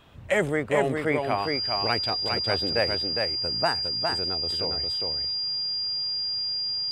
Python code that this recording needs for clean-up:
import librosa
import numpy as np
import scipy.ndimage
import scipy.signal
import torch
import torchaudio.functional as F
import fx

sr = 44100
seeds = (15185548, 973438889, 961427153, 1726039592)

y = fx.notch(x, sr, hz=4800.0, q=30.0)
y = fx.fix_echo_inverse(y, sr, delay_ms=408, level_db=-4.0)